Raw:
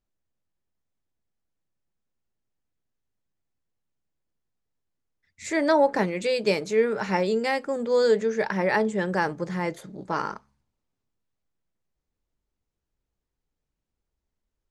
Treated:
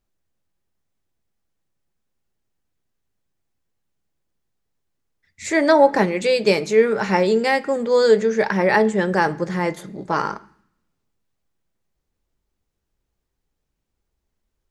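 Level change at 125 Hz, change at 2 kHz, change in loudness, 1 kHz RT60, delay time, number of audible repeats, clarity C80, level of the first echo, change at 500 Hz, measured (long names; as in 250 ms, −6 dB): +5.5 dB, +6.5 dB, +6.5 dB, 0.65 s, no echo audible, no echo audible, 23.0 dB, no echo audible, +6.5 dB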